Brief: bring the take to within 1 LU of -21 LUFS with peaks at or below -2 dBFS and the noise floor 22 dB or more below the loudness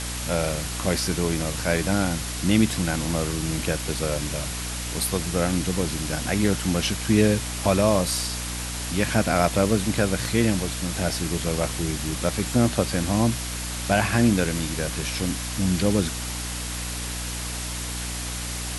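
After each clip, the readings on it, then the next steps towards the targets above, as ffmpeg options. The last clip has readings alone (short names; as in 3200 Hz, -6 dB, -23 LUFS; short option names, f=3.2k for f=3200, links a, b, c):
hum 60 Hz; harmonics up to 300 Hz; hum level -31 dBFS; noise floor -31 dBFS; noise floor target -47 dBFS; loudness -24.5 LUFS; peak -5.0 dBFS; loudness target -21.0 LUFS
-> -af "bandreject=f=60:t=h:w=6,bandreject=f=120:t=h:w=6,bandreject=f=180:t=h:w=6,bandreject=f=240:t=h:w=6,bandreject=f=300:t=h:w=6"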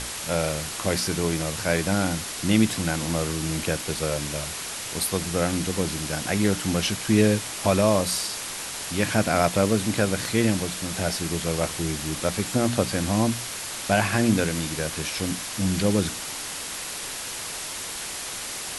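hum none; noise floor -34 dBFS; noise floor target -47 dBFS
-> -af "afftdn=nr=13:nf=-34"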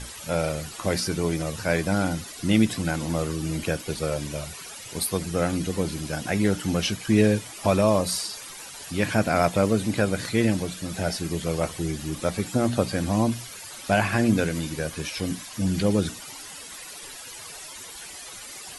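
noise floor -41 dBFS; noise floor target -48 dBFS
-> -af "afftdn=nr=7:nf=-41"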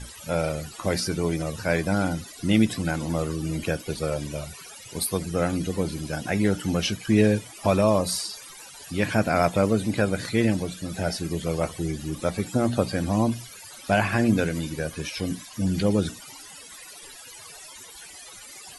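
noise floor -44 dBFS; noise floor target -48 dBFS
-> -af "afftdn=nr=6:nf=-44"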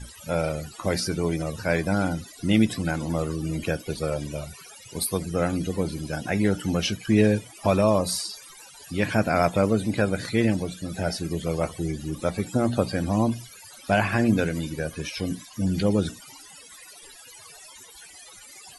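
noise floor -47 dBFS; noise floor target -48 dBFS; loudness -25.5 LUFS; peak -5.5 dBFS; loudness target -21.0 LUFS
-> -af "volume=4.5dB,alimiter=limit=-2dB:level=0:latency=1"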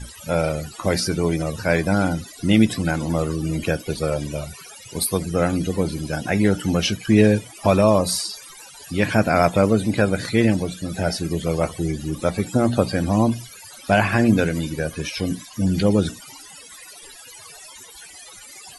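loudness -21.0 LUFS; peak -2.0 dBFS; noise floor -43 dBFS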